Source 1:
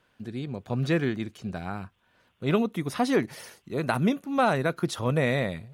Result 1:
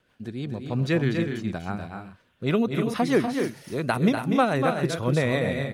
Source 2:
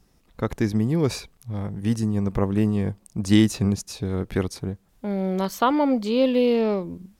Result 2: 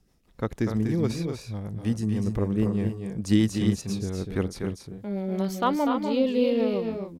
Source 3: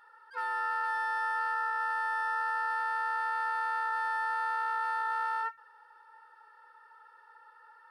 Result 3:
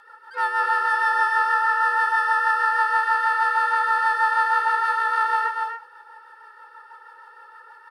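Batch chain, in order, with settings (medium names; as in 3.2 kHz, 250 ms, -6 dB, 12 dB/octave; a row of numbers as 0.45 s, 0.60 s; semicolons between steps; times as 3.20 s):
rotary cabinet horn 6.3 Hz; hard clipper -6 dBFS; multi-tap echo 244/280 ms -6.5/-9 dB; peak normalisation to -9 dBFS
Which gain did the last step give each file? +3.0 dB, -3.0 dB, +13.5 dB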